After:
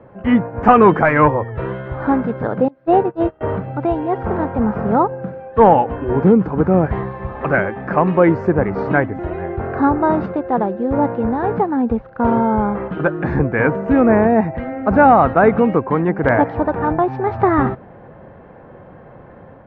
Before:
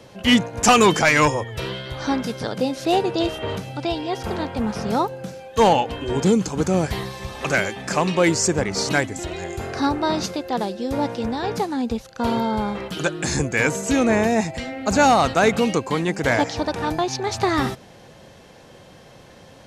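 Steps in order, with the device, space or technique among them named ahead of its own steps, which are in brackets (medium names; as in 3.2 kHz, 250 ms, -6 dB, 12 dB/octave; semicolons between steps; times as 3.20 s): 2.68–3.41 s: gate -20 dBFS, range -25 dB; action camera in a waterproof case (low-pass 1.6 kHz 24 dB/octave; level rider gain up to 4 dB; trim +2.5 dB; AAC 64 kbps 44.1 kHz)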